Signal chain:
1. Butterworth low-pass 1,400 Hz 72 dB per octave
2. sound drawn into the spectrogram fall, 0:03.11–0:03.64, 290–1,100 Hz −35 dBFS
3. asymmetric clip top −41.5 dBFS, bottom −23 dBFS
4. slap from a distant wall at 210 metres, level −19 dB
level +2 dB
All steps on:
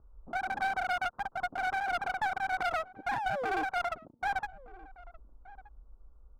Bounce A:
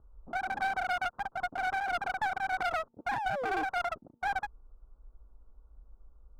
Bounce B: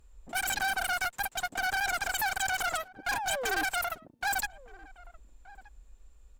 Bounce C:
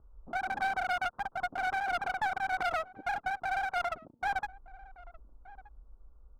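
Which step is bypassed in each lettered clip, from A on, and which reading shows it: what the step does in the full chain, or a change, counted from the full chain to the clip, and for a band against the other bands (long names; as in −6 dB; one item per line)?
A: 4, echo-to-direct ratio −23.0 dB to none audible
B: 1, 8 kHz band +21.0 dB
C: 2, 250 Hz band −5.0 dB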